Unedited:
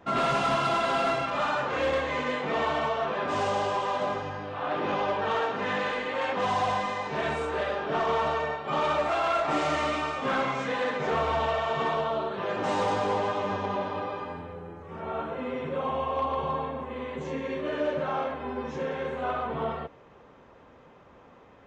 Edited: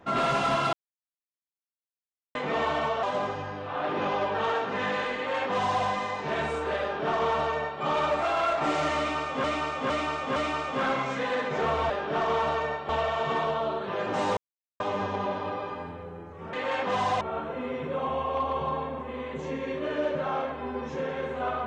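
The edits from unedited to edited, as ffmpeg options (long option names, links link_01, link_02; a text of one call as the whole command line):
ffmpeg -i in.wav -filter_complex "[0:a]asplit=13[link_01][link_02][link_03][link_04][link_05][link_06][link_07][link_08][link_09][link_10][link_11][link_12][link_13];[link_01]atrim=end=0.73,asetpts=PTS-STARTPTS,afade=type=out:start_time=0.726:duration=0.004:curve=hsin[link_14];[link_02]atrim=start=0.73:end=2.35,asetpts=PTS-STARTPTS,volume=0[link_15];[link_03]atrim=start=2.35:end=3.032,asetpts=PTS-STARTPTS,afade=type=in:duration=0.004:curve=hsin[link_16];[link_04]atrim=start=3.898:end=10.312[link_17];[link_05]atrim=start=9.848:end=10.312[link_18];[link_06]atrim=start=9.848:end=10.312[link_19];[link_07]atrim=start=9.848:end=11.392[link_20];[link_08]atrim=start=7.688:end=8.682[link_21];[link_09]atrim=start=11.388:end=12.87,asetpts=PTS-STARTPTS,afade=type=out:start_time=1.478:duration=0.004:curve=hsin[link_22];[link_10]atrim=start=12.87:end=13.3,asetpts=PTS-STARTPTS,volume=0[link_23];[link_11]atrim=start=13.3:end=15.032,asetpts=PTS-STARTPTS,afade=type=in:duration=0.004:curve=hsin[link_24];[link_12]atrim=start=6.028:end=6.712[link_25];[link_13]atrim=start=15.028[link_26];[link_14][link_15][link_16]concat=n=3:v=0:a=1[link_27];[link_27][link_17]acrossfade=duration=0.004:curve1=hsin:curve2=hsin[link_28];[link_28][link_18]acrossfade=duration=0.004:curve1=hsin:curve2=hsin[link_29];[link_29][link_19]acrossfade=duration=0.004:curve1=hsin:curve2=hsin[link_30];[link_30][link_20]acrossfade=duration=0.004:curve1=hsin:curve2=hsin[link_31];[link_31][link_21]acrossfade=duration=0.004:curve1=hsin:curve2=hsin[link_32];[link_22][link_23][link_24]concat=n=3:v=0:a=1[link_33];[link_32][link_33]acrossfade=duration=0.004:curve1=hsin:curve2=hsin[link_34];[link_34][link_25]acrossfade=duration=0.004:curve1=hsin:curve2=hsin[link_35];[link_35][link_26]acrossfade=duration=0.004:curve1=hsin:curve2=hsin" out.wav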